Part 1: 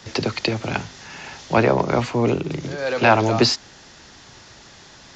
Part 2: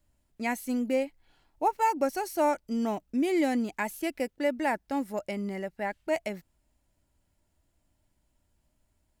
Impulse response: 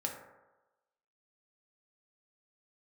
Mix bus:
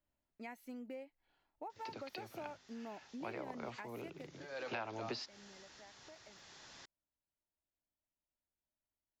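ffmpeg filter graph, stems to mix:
-filter_complex "[0:a]acrossover=split=6200[s0][s1];[s1]acompressor=threshold=0.00251:ratio=4:attack=1:release=60[s2];[s0][s2]amix=inputs=2:normalize=0,lowshelf=f=320:g=-8.5,adelay=1700,volume=0.335[s3];[1:a]lowshelf=f=200:g=-12,acompressor=threshold=0.0158:ratio=5,equalizer=f=8900:w=0.65:g=-13.5,volume=0.355,afade=t=out:st=3.81:d=0.77:silence=0.281838,asplit=2[s4][s5];[s5]apad=whole_len=302288[s6];[s3][s6]sidechaincompress=threshold=0.00141:ratio=12:attack=9.9:release=1090[s7];[s7][s4]amix=inputs=2:normalize=0,acompressor=threshold=0.0112:ratio=6"

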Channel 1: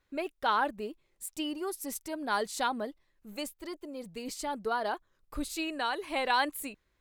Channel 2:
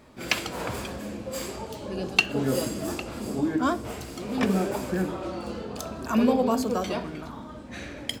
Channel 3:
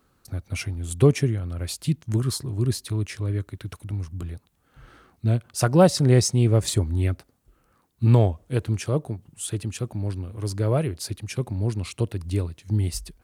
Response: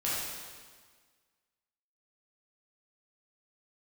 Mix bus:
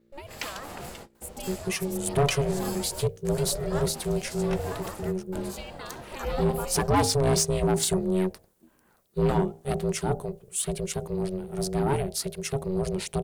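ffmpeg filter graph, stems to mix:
-filter_complex "[0:a]acompressor=threshold=0.02:ratio=4,aeval=exprs='val(0)+0.00126*(sin(2*PI*60*n/s)+sin(2*PI*2*60*n/s)/2+sin(2*PI*3*60*n/s)/3+sin(2*PI*4*60*n/s)/4+sin(2*PI*5*60*n/s)/5)':c=same,volume=0.794,asplit=2[s0][s1];[1:a]adelay=100,volume=0.531[s2];[2:a]bandreject=f=60:t=h:w=6,bandreject=f=120:t=h:w=6,bandreject=f=180:t=h:w=6,bandreject=f=240:t=h:w=6,bandreject=f=300:t=h:w=6,bandreject=f=360:t=h:w=6,bandreject=f=420:t=h:w=6,bandreject=f=480:t=h:w=6,bandreject=f=540:t=h:w=6,adelay=1150,volume=1.33[s3];[s1]apad=whole_len=366068[s4];[s2][s4]sidechaingate=range=0.0224:threshold=0.00158:ratio=16:detection=peak[s5];[s0][s5][s3]amix=inputs=3:normalize=0,highshelf=f=6000:g=7,aeval=exprs='val(0)*sin(2*PI*280*n/s)':c=same,asoftclip=type=tanh:threshold=0.15"

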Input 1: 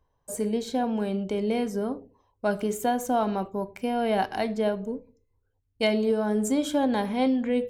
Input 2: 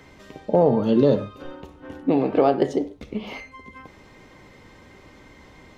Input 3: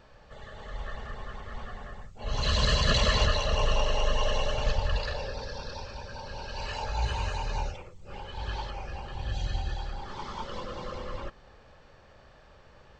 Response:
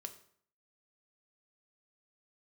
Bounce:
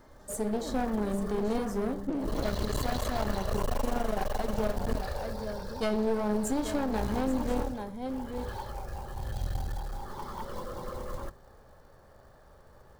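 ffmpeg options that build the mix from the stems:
-filter_complex "[0:a]volume=0.708,asplit=4[s0][s1][s2][s3];[s1]volume=0.422[s4];[s2]volume=0.376[s5];[1:a]bass=f=250:g=7,treble=f=4000:g=5,aecho=1:1:3.3:0.8,volume=0.15[s6];[2:a]highshelf=f=3300:g=-8,bandreject=f=50:t=h:w=6,bandreject=f=100:t=h:w=6,bandreject=f=150:t=h:w=6,bandreject=f=200:t=h:w=6,acrusher=bits=4:mode=log:mix=0:aa=0.000001,volume=0.794,asplit=2[s7][s8];[s8]volume=0.501[s9];[s3]apad=whole_len=254786[s10];[s6][s10]sidechaincompress=threshold=0.00708:ratio=8:attack=16:release=106[s11];[3:a]atrim=start_sample=2205[s12];[s4][s9]amix=inputs=2:normalize=0[s13];[s13][s12]afir=irnorm=-1:irlink=0[s14];[s5]aecho=0:1:833:1[s15];[s0][s11][s7][s14][s15]amix=inputs=5:normalize=0,equalizer=f=2600:t=o:w=0.7:g=-12,aeval=exprs='clip(val(0),-1,0.0251)':c=same,alimiter=limit=0.126:level=0:latency=1:release=238"

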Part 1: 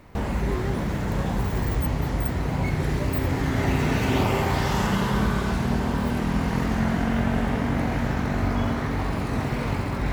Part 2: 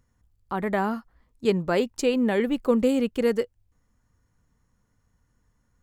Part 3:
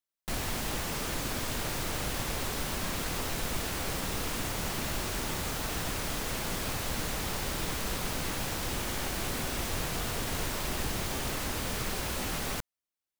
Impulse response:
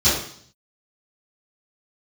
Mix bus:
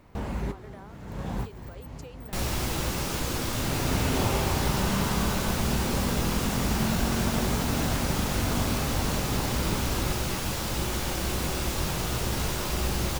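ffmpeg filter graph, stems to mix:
-filter_complex "[0:a]volume=0.531[s0];[1:a]highpass=370,alimiter=limit=0.1:level=0:latency=1:release=329,volume=0.141,asplit=2[s1][s2];[2:a]adelay=2050,volume=1.26,asplit=2[s3][s4];[s4]volume=0.0668[s5];[s2]apad=whole_len=446437[s6];[s0][s6]sidechaincompress=threshold=0.00126:ratio=5:attack=11:release=413[s7];[3:a]atrim=start_sample=2205[s8];[s5][s8]afir=irnorm=-1:irlink=0[s9];[s7][s1][s3][s9]amix=inputs=4:normalize=0,equalizer=f=1900:t=o:w=0.41:g=-3"

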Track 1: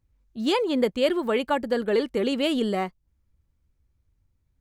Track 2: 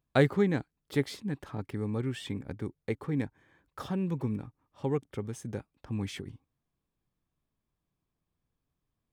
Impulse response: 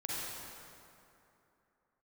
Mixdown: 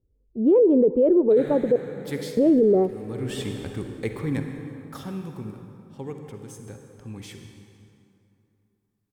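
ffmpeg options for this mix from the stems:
-filter_complex "[0:a]lowpass=f=440:t=q:w=4.9,volume=0.708,asplit=3[s0][s1][s2];[s0]atrim=end=1.76,asetpts=PTS-STARTPTS,afade=t=out:st=1.756:d=0.004:c=hsin[s3];[s1]atrim=start=1.76:end=2.37,asetpts=PTS-STARTPTS,volume=0[s4];[s2]atrim=start=2.37,asetpts=PTS-STARTPTS,afade=t=in:d=0.004:c=hsin[s5];[s3][s4][s5]concat=n=3:v=0:a=1,asplit=3[s6][s7][s8];[s7]volume=0.075[s9];[1:a]aemphasis=mode=production:type=cd,adelay=1150,volume=0.178,afade=t=out:st=4.44:d=0.8:silence=0.375837,asplit=2[s10][s11];[s11]volume=0.596[s12];[s8]apad=whole_len=453329[s13];[s10][s13]sidechaincompress=threshold=0.0141:ratio=8:attack=16:release=102[s14];[2:a]atrim=start_sample=2205[s15];[s9][s12]amix=inputs=2:normalize=0[s16];[s16][s15]afir=irnorm=-1:irlink=0[s17];[s6][s14][s17]amix=inputs=3:normalize=0,dynaudnorm=f=160:g=5:m=6.31,alimiter=limit=0.266:level=0:latency=1:release=11"

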